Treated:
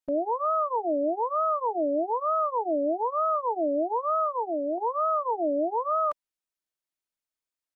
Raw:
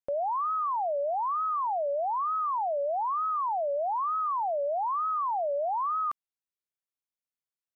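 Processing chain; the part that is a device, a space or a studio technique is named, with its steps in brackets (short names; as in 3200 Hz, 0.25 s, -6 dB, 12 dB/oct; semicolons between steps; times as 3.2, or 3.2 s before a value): 4.24–4.78 HPF 580 Hz 6 dB/oct; comb 3.2 ms, depth 86%; octave pedal (harmoniser -12 st -4 dB); gain -2.5 dB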